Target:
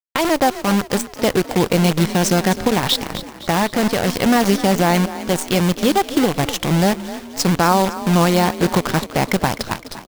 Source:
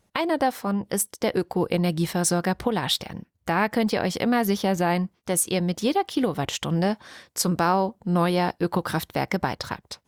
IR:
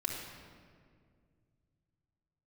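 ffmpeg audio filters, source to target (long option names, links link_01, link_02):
-filter_complex "[0:a]lowpass=frequency=7300:width=0.5412,lowpass=frequency=7300:width=1.3066,lowshelf=frequency=79:gain=10,asettb=1/sr,asplit=3[link_01][link_02][link_03];[link_01]atrim=end=3.514[link_04];[link_02]atrim=start=3.51:end=4.08,asetpts=PTS-STARTPTS,afade=type=in:duration=0.004:curve=qsin,afade=type=out:start_time=0.566:duration=0.004:curve=qsin,asoftclip=type=hard:threshold=-22.5dB[link_05];[link_03]atrim=start=4.076[link_06];[link_04][link_05]acrossfade=duration=0.004:curve1=hsin:curve2=qsin[link_07];[link_07][link_06]acrossfade=duration=0.004:curve1=qsin:curve2=hsin,acrusher=bits=5:dc=4:mix=0:aa=0.000001,asplit=6[link_08][link_09][link_10][link_11][link_12][link_13];[link_09]adelay=256,afreqshift=35,volume=-14dB[link_14];[link_10]adelay=512,afreqshift=70,volume=-19.8dB[link_15];[link_11]adelay=768,afreqshift=105,volume=-25.7dB[link_16];[link_12]adelay=1024,afreqshift=140,volume=-31.5dB[link_17];[link_13]adelay=1280,afreqshift=175,volume=-37.4dB[link_18];[link_08][link_14][link_15][link_16][link_17][link_18]amix=inputs=6:normalize=0,volume=6dB"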